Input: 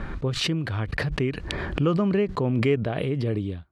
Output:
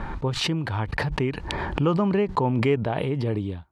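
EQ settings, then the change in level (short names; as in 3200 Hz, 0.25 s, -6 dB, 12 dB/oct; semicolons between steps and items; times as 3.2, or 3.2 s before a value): bell 890 Hz +13 dB 0.35 oct; 0.0 dB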